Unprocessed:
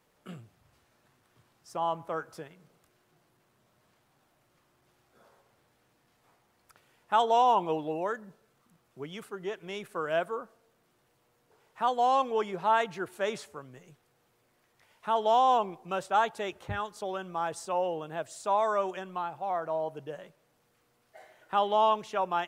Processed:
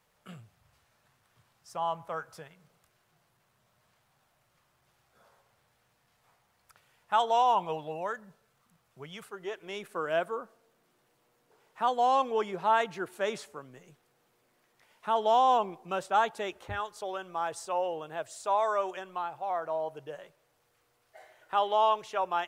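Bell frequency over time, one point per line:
bell -11 dB 1 oct
9.22 s 310 Hz
10.02 s 76 Hz
16.28 s 76 Hz
16.89 s 210 Hz

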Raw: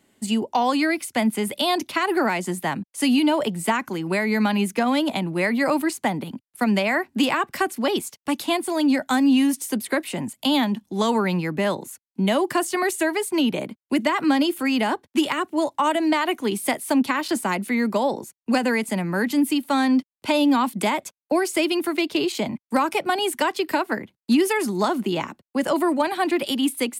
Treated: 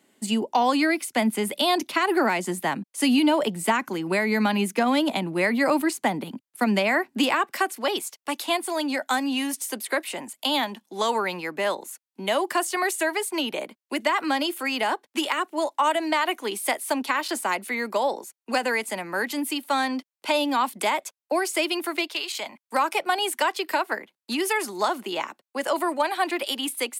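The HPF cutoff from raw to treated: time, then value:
7 s 200 Hz
7.67 s 470 Hz
22 s 470 Hz
22.22 s 1200 Hz
22.8 s 510 Hz

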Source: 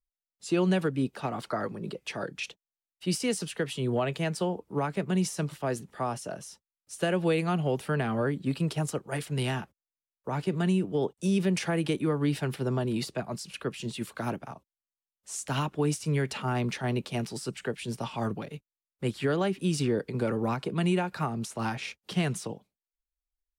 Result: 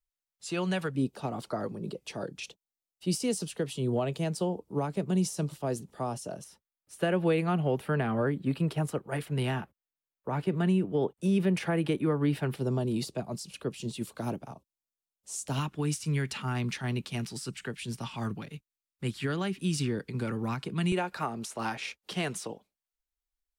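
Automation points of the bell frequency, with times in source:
bell -9.5 dB 1.5 oct
290 Hz
from 0.95 s 1800 Hz
from 6.44 s 6300 Hz
from 12.55 s 1700 Hz
from 15.59 s 560 Hz
from 20.92 s 130 Hz

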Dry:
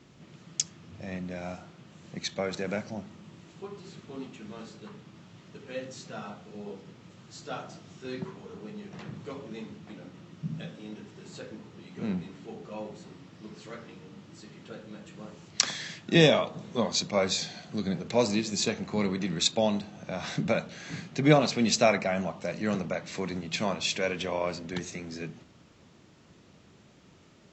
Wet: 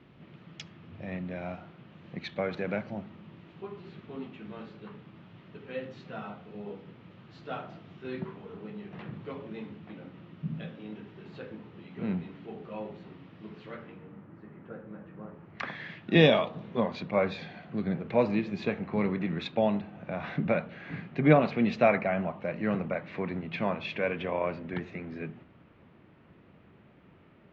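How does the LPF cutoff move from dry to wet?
LPF 24 dB/oct
13.7 s 3200 Hz
14.28 s 1800 Hz
15.38 s 1800 Hz
16.39 s 3900 Hz
16.86 s 2600 Hz

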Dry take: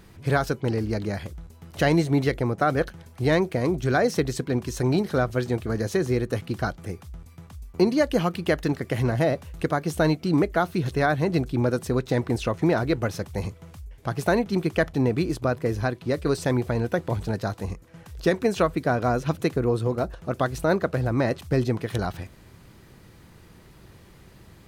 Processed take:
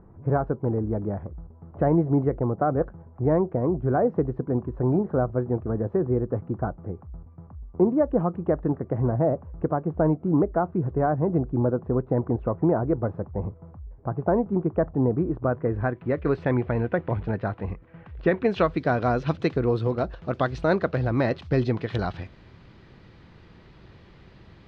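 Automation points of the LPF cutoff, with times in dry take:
LPF 24 dB/oct
15.15 s 1100 Hz
16.3 s 2500 Hz
18.28 s 2500 Hz
18.69 s 4400 Hz

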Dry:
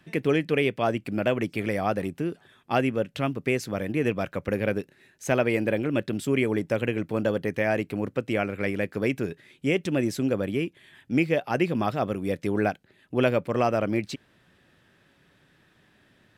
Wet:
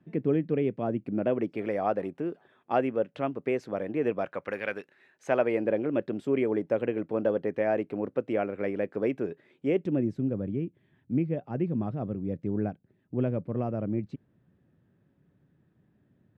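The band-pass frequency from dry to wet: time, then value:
band-pass, Q 0.77
0.97 s 220 Hz
1.67 s 580 Hz
4.16 s 580 Hz
4.65 s 1700 Hz
5.68 s 500 Hz
9.67 s 500 Hz
10.13 s 140 Hz

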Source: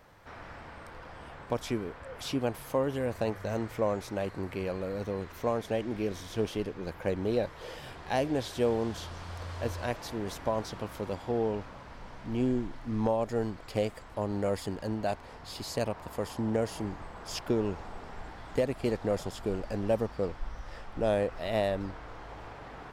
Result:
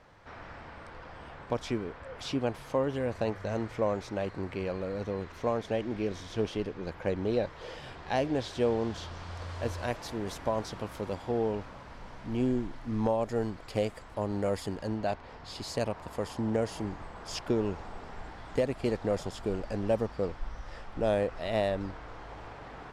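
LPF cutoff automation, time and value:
9.17 s 6600 Hz
9.82 s 12000 Hz
14.75 s 12000 Hz
15.23 s 4500 Hz
15.68 s 9500 Hz

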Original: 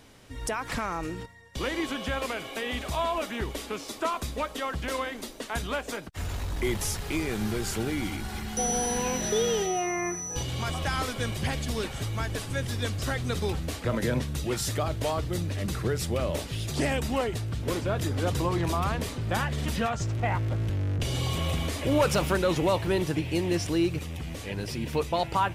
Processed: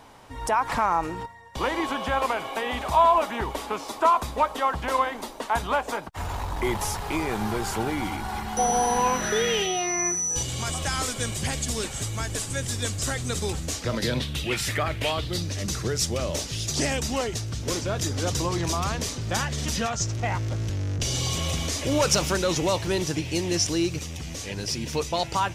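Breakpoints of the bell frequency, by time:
bell +14 dB 0.99 oct
9.04 s 910 Hz
10.15 s 7500 Hz
13.61 s 7500 Hz
14.84 s 1800 Hz
15.53 s 6000 Hz

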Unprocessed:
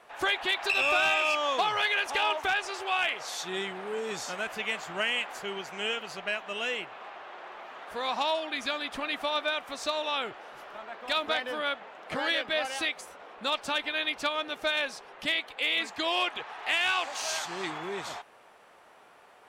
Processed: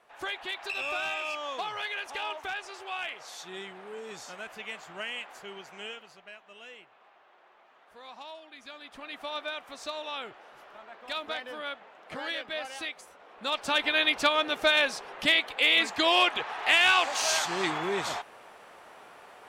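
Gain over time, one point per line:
5.8 s -7.5 dB
6.23 s -16 dB
8.56 s -16 dB
9.33 s -6 dB
13.24 s -6 dB
13.86 s +5.5 dB

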